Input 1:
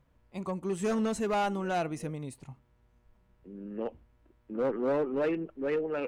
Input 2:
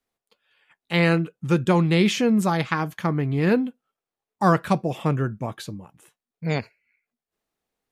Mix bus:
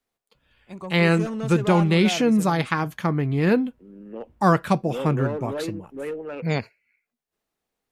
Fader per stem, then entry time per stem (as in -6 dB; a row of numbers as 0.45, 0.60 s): -1.0, +0.5 dB; 0.35, 0.00 s